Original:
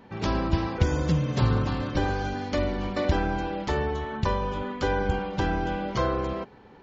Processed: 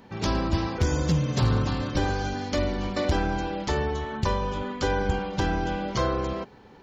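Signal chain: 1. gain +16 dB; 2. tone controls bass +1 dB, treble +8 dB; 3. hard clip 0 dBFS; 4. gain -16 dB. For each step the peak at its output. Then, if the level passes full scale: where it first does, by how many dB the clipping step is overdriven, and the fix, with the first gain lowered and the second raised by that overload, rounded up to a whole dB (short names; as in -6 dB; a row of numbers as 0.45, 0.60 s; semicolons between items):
+8.5, +9.5, 0.0, -16.0 dBFS; step 1, 9.5 dB; step 1 +6 dB, step 4 -6 dB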